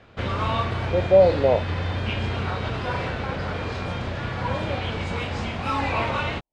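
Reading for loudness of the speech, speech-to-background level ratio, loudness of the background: -20.0 LUFS, 7.5 dB, -27.5 LUFS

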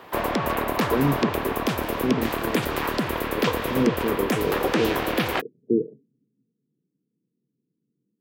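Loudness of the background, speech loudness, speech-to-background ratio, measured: -25.5 LUFS, -28.0 LUFS, -2.5 dB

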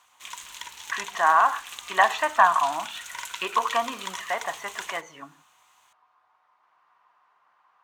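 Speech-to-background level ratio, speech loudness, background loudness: 13.0 dB, -24.5 LUFS, -37.5 LUFS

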